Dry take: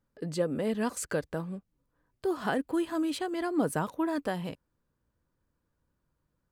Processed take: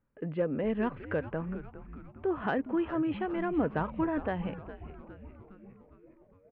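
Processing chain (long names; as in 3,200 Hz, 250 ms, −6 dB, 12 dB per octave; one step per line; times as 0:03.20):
Butterworth low-pass 2,800 Hz 48 dB per octave
soft clipping −17.5 dBFS, distortion −25 dB
echo with shifted repeats 409 ms, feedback 61%, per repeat −130 Hz, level −13 dB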